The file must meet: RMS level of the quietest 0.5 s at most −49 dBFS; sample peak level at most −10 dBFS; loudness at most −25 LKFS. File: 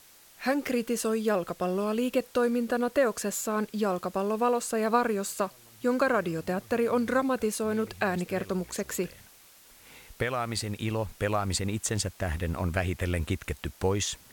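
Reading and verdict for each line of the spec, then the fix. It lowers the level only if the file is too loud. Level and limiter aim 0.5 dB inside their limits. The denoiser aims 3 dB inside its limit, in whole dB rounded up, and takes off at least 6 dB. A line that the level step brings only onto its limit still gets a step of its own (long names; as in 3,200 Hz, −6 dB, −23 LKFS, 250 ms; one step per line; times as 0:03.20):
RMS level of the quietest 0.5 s −55 dBFS: in spec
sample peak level −11.5 dBFS: in spec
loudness −29.0 LKFS: in spec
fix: no processing needed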